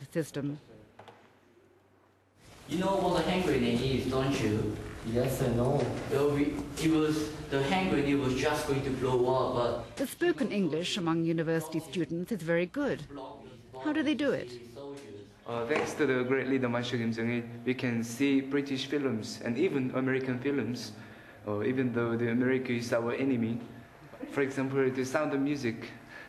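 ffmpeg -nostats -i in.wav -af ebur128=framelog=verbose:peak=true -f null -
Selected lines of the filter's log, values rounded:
Integrated loudness:
  I:         -30.7 LUFS
  Threshold: -41.4 LUFS
Loudness range:
  LRA:         3.8 LU
  Threshold: -51.2 LUFS
  LRA low:   -33.2 LUFS
  LRA high:  -29.5 LUFS
True peak:
  Peak:      -13.3 dBFS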